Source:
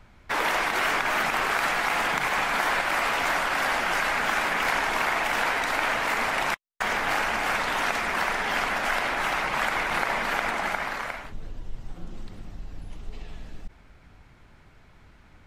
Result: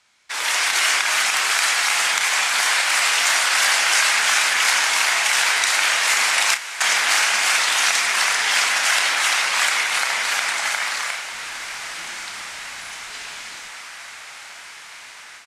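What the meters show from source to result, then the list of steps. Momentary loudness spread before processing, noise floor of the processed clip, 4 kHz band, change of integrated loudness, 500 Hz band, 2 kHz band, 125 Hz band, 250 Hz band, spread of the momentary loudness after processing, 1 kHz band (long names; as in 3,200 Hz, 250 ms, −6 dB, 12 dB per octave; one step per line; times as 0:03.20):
19 LU, −40 dBFS, +13.5 dB, +8.0 dB, −3.5 dB, +7.0 dB, below −15 dB, can't be measured, 16 LU, +1.5 dB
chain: double-tracking delay 31 ms −9 dB
feedback delay with all-pass diffusion 1,361 ms, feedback 64%, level −16 dB
automatic gain control gain up to 12.5 dB
meter weighting curve ITU-R 468
downsampling to 32,000 Hz
high-shelf EQ 5,700 Hz +11 dB
level −9 dB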